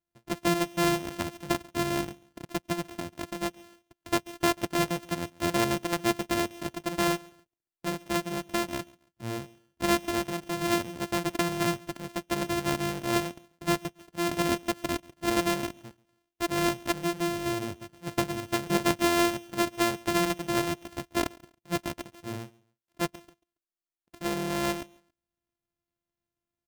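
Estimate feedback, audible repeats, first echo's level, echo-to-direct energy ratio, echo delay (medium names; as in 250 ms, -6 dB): 30%, 2, -24.0 dB, -23.5 dB, 139 ms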